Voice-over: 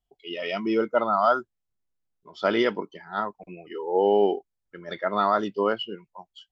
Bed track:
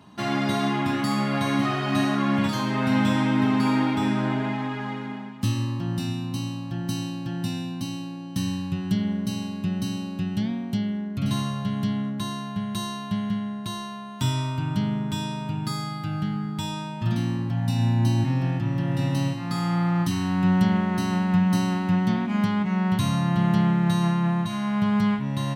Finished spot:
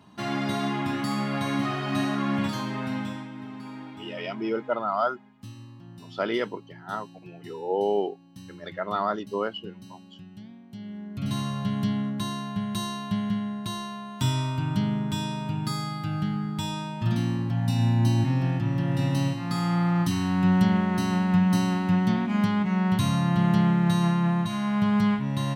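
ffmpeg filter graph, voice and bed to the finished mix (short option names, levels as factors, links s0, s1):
-filter_complex "[0:a]adelay=3750,volume=0.596[s0];[1:a]volume=5.01,afade=t=out:st=2.48:d=0.81:silence=0.188365,afade=t=in:st=10.7:d=0.95:silence=0.133352[s1];[s0][s1]amix=inputs=2:normalize=0"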